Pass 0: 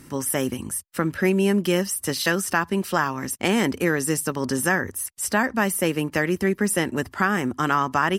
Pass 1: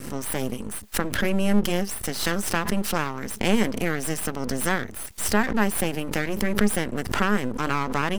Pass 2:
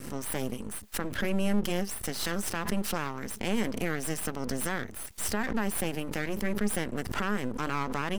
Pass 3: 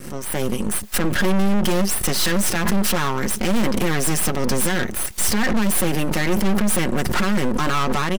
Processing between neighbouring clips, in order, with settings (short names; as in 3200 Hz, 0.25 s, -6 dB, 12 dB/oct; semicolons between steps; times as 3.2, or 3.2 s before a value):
bell 210 Hz +10 dB 0.3 oct; half-wave rectifier; backwards sustainer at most 73 dB/s; gain -1.5 dB
limiter -12 dBFS, peak gain reduction 10.5 dB; gain -5 dB
comb 5.5 ms, depth 34%; AGC gain up to 10.5 dB; hard clip -17 dBFS, distortion -7 dB; gain +5 dB